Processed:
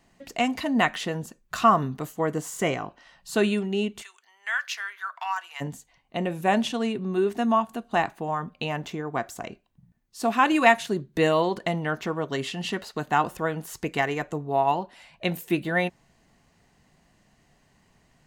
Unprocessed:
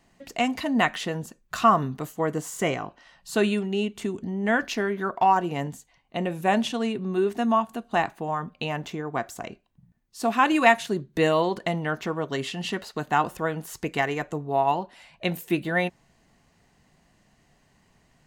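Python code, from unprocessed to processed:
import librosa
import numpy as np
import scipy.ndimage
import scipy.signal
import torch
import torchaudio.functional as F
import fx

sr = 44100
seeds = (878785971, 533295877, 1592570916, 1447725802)

y = fx.highpass(x, sr, hz=1200.0, slope=24, at=(4.01, 5.6), fade=0.02)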